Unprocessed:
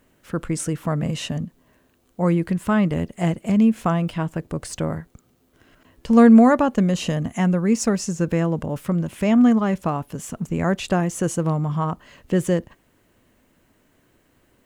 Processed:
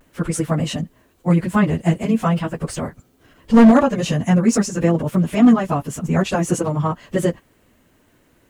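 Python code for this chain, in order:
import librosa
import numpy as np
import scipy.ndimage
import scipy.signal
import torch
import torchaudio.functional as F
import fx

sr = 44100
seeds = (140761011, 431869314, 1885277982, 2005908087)

y = fx.stretch_vocoder_free(x, sr, factor=0.58)
y = fx.vibrato(y, sr, rate_hz=0.44, depth_cents=31.0)
y = np.clip(10.0 ** (12.5 / 20.0) * y, -1.0, 1.0) / 10.0 ** (12.5 / 20.0)
y = y * librosa.db_to_amplitude(7.0)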